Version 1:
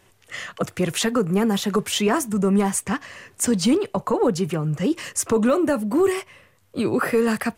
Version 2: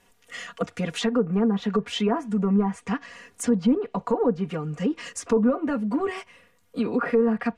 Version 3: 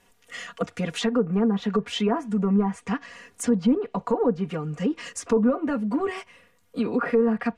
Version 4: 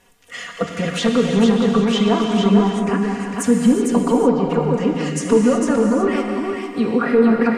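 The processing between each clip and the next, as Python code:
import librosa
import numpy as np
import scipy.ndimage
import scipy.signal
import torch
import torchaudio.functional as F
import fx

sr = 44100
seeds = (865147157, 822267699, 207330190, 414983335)

y1 = x + 0.89 * np.pad(x, (int(4.2 * sr / 1000.0), 0))[:len(x)]
y1 = fx.env_lowpass_down(y1, sr, base_hz=1100.0, full_db=-11.5)
y1 = F.gain(torch.from_numpy(y1), -6.0).numpy()
y2 = y1
y3 = y2 + 10.0 ** (-4.5 / 20.0) * np.pad(y2, (int(452 * sr / 1000.0), 0))[:len(y2)]
y3 = fx.rev_gated(y3, sr, seeds[0], gate_ms=400, shape='flat', drr_db=2.5)
y3 = F.gain(torch.from_numpy(y3), 5.0).numpy()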